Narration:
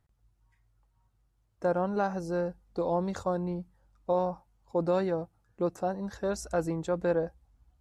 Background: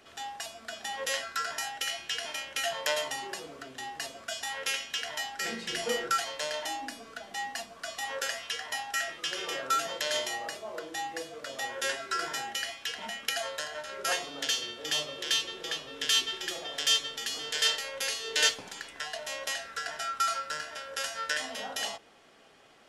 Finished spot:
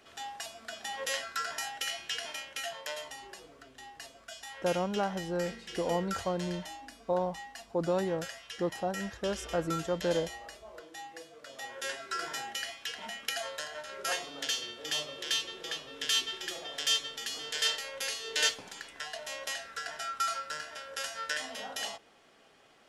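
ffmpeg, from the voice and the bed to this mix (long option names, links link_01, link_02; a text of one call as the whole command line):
ffmpeg -i stem1.wav -i stem2.wav -filter_complex "[0:a]adelay=3000,volume=-2.5dB[link_01];[1:a]volume=4.5dB,afade=type=out:start_time=2.16:duration=0.71:silence=0.421697,afade=type=in:start_time=11.38:duration=0.94:silence=0.473151[link_02];[link_01][link_02]amix=inputs=2:normalize=0" out.wav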